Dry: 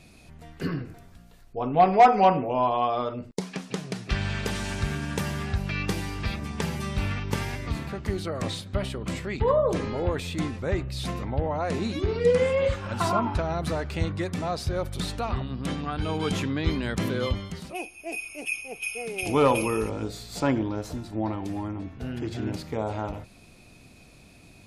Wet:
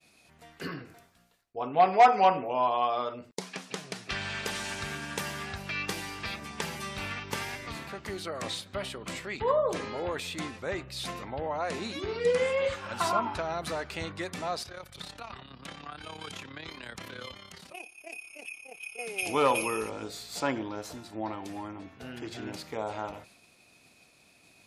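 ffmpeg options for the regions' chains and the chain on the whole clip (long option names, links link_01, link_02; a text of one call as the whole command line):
ffmpeg -i in.wav -filter_complex "[0:a]asettb=1/sr,asplit=3[link_01][link_02][link_03];[link_01]atrim=end=14.634[link_04];[link_02]atrim=start=14.63:end=18.99,asetpts=PTS-STARTPTS,afade=type=in:duration=0.004:curve=qsin,afade=type=out:start_time=4.356:duration=0.004:curve=qsin,acrossover=split=180|540|1100|5700[link_05][link_06][link_07][link_08][link_09];[link_05]acompressor=threshold=-32dB:ratio=3[link_10];[link_06]acompressor=threshold=-46dB:ratio=3[link_11];[link_07]acompressor=threshold=-44dB:ratio=3[link_12];[link_08]acompressor=threshold=-40dB:ratio=3[link_13];[link_09]acompressor=threshold=-53dB:ratio=3[link_14];[link_10][link_11][link_12][link_13][link_14]amix=inputs=5:normalize=0,tremolo=f=34:d=0.71[link_15];[link_03]atrim=start=18.986[link_16];[link_04][link_15]acrossfade=duration=0.004:curve1=hsin:curve2=qsin[link_17];[link_17][link_16]acrossfade=duration=0.004:curve1=qsin:curve2=hsin,highpass=frequency=120:poles=1,agate=range=-33dB:threshold=-49dB:ratio=3:detection=peak,lowshelf=frequency=400:gain=-11.5" out.wav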